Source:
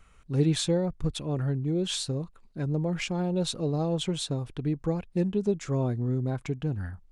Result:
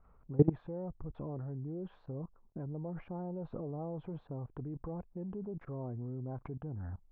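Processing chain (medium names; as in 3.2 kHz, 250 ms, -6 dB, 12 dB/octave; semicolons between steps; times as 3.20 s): level held to a coarse grid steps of 21 dB; four-pole ladder low-pass 1.2 kHz, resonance 30%; trim +8.5 dB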